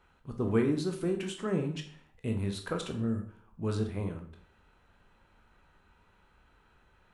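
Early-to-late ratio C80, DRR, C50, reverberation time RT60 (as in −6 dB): 13.0 dB, 4.0 dB, 9.0 dB, 0.55 s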